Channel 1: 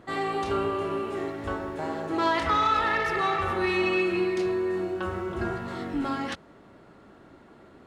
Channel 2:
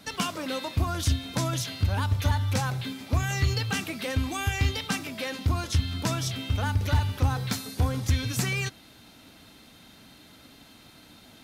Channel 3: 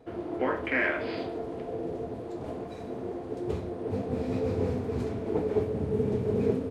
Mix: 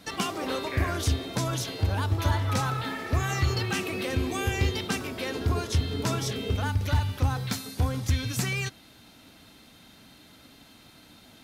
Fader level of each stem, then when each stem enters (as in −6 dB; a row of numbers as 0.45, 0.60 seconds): −10.5, −1.0, −8.5 decibels; 0.00, 0.00, 0.00 seconds